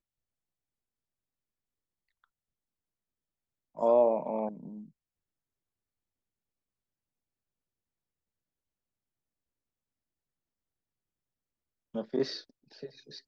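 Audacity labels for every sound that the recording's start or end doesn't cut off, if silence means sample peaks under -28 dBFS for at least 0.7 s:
3.810000	4.490000	sound
11.960000	12.300000	sound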